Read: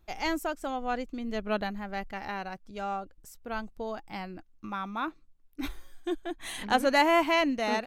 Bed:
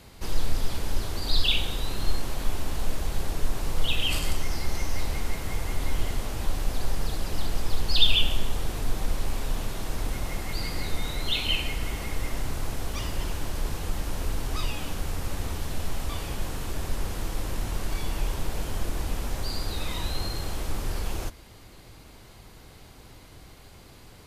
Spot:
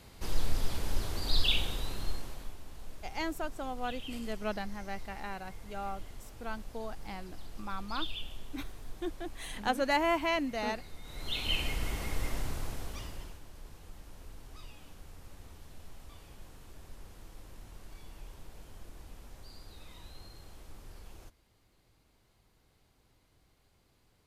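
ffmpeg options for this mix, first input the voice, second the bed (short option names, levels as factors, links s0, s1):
-filter_complex "[0:a]adelay=2950,volume=0.531[s0];[1:a]volume=3.16,afade=t=out:st=1.59:d=0.97:silence=0.199526,afade=t=in:st=11.03:d=0.6:silence=0.188365,afade=t=out:st=12.28:d=1.13:silence=0.158489[s1];[s0][s1]amix=inputs=2:normalize=0"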